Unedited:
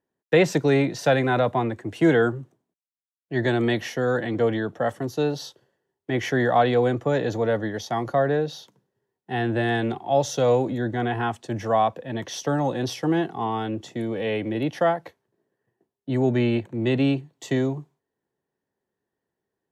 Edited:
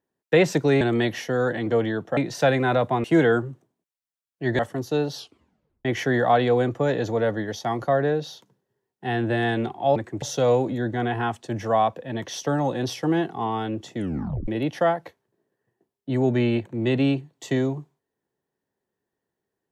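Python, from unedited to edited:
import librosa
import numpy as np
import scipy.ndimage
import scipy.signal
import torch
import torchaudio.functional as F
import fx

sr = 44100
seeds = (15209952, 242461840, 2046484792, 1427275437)

y = fx.edit(x, sr, fx.move(start_s=1.68, length_s=0.26, to_s=10.22),
    fx.move(start_s=3.49, length_s=1.36, to_s=0.81),
    fx.tape_stop(start_s=5.41, length_s=0.7),
    fx.tape_stop(start_s=13.97, length_s=0.51), tone=tone)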